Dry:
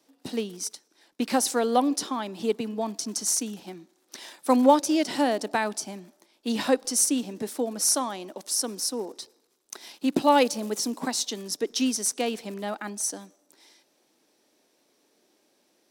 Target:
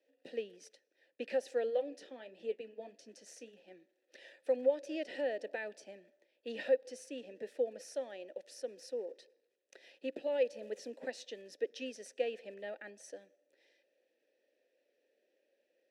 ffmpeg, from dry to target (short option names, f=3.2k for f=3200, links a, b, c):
-filter_complex "[0:a]asplit=3[a][b][c];[a]afade=t=out:st=1.69:d=0.02[d];[b]flanger=delay=9:depth=3.7:regen=-52:speed=1.6:shape=triangular,afade=t=in:st=1.69:d=0.02,afade=t=out:st=3.7:d=0.02[e];[c]afade=t=in:st=3.7:d=0.02[f];[d][e][f]amix=inputs=3:normalize=0,alimiter=limit=-16dB:level=0:latency=1:release=253,asplit=3[g][h][i];[g]bandpass=f=530:t=q:w=8,volume=0dB[j];[h]bandpass=f=1.84k:t=q:w=8,volume=-6dB[k];[i]bandpass=f=2.48k:t=q:w=8,volume=-9dB[l];[j][k][l]amix=inputs=3:normalize=0,volume=1dB"